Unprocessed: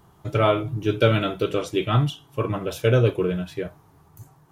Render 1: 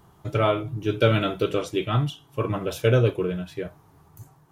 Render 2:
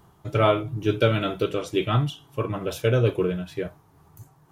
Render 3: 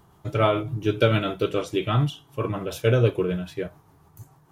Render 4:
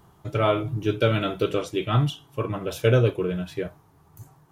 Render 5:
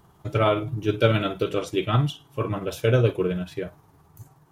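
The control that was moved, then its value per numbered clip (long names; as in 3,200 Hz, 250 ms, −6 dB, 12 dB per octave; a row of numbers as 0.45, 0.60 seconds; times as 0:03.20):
amplitude tremolo, speed: 0.74, 2.2, 6.9, 1.4, 19 Hertz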